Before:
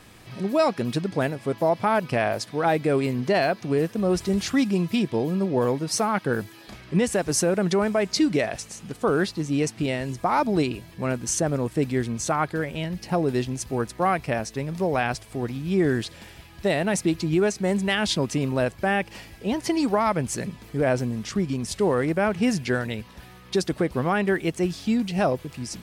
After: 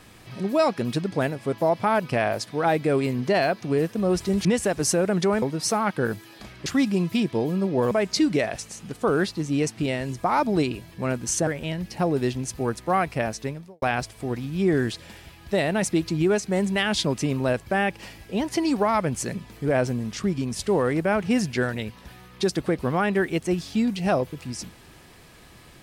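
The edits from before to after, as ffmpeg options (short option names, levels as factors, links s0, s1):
-filter_complex "[0:a]asplit=7[s0][s1][s2][s3][s4][s5][s6];[s0]atrim=end=4.452[s7];[s1]atrim=start=6.938:end=7.912[s8];[s2]atrim=start=5.698:end=6.942[s9];[s3]atrim=start=4.448:end=5.702[s10];[s4]atrim=start=7.908:end=11.472[s11];[s5]atrim=start=12.588:end=14.94,asetpts=PTS-STARTPTS,afade=t=out:st=1.992:d=0.36:c=qua[s12];[s6]atrim=start=14.94,asetpts=PTS-STARTPTS,afade=t=in:d=0.004:c=hsin[s13];[s7][s8]acrossfade=d=0.004:c1=hsin:c2=hsin[s14];[s14][s9]acrossfade=d=0.004:c1=hsin:c2=hsin[s15];[s15][s10]acrossfade=d=0.004:c1=hsin:c2=hsin[s16];[s16][s11]acrossfade=d=0.004:c1=hsin:c2=hsin[s17];[s12][s13]concat=n=2:v=0:a=1[s18];[s17][s18]acrossfade=d=0.004:c1=hsin:c2=hsin"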